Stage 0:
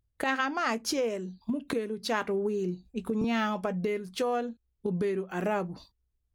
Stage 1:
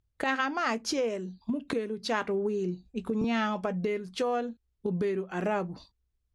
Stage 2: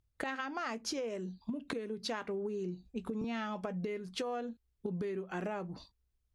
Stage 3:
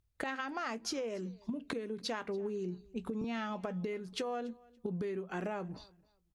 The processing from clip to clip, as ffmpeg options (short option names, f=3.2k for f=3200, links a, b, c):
-af "lowpass=7.9k"
-af "acompressor=threshold=-33dB:ratio=6,volume=-1.5dB"
-af "aecho=1:1:285|570:0.0631|0.0133"